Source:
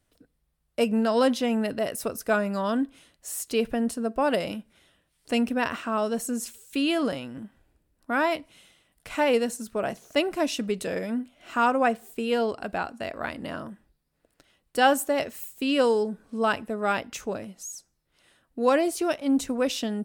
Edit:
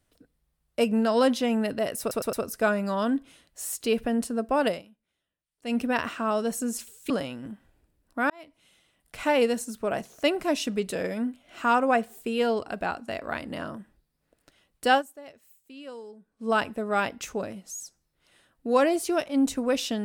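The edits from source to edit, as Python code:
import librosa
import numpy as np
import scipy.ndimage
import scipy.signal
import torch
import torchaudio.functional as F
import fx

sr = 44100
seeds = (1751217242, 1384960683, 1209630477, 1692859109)

y = fx.edit(x, sr, fx.stutter(start_s=2.0, slice_s=0.11, count=4),
    fx.fade_down_up(start_s=4.35, length_s=1.1, db=-20.5, fade_s=0.15),
    fx.cut(start_s=6.77, length_s=0.25),
    fx.fade_in_span(start_s=8.22, length_s=0.89),
    fx.fade_down_up(start_s=14.81, length_s=1.63, db=-19.5, fade_s=0.14, curve='qsin'), tone=tone)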